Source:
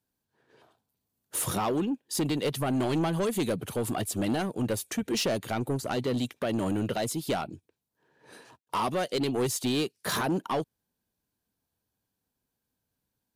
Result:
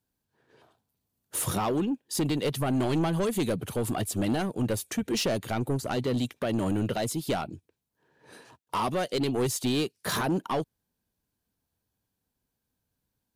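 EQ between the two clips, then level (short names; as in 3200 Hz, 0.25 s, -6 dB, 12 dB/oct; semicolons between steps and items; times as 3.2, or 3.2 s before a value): low shelf 110 Hz +6 dB; 0.0 dB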